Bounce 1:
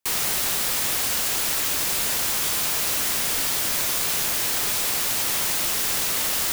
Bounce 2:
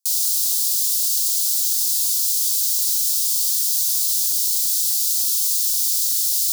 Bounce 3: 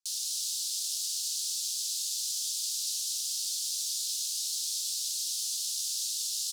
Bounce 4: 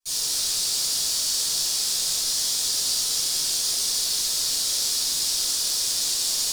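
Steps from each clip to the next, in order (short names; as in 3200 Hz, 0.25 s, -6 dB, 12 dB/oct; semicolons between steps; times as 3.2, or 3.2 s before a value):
inverse Chebyshev high-pass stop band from 2200 Hz, stop band 40 dB; gain +5 dB
air absorption 67 m; echo 0.196 s -6 dB; gain -4.5 dB
in parallel at -10.5 dB: wrapped overs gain 32.5 dB; on the sum: reverb RT60 1.4 s, pre-delay 3 ms, DRR -18 dB; gain -6.5 dB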